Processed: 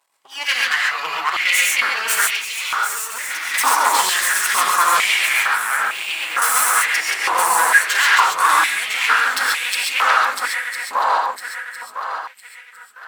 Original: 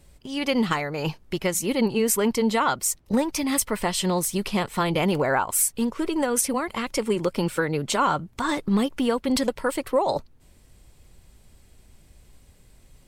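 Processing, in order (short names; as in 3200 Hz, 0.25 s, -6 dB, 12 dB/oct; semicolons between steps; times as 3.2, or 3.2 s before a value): regenerating reverse delay 0.503 s, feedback 67%, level -4 dB; spectral noise reduction 13 dB; 5.32–6.42 de-esser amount 95%; wavefolder -16 dBFS; 2.31–3.54 tube stage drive 22 dB, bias 0.65; half-wave rectifier; non-linear reverb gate 0.16 s rising, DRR -2 dB; stepped high-pass 2.2 Hz 1000–2500 Hz; gain +7.5 dB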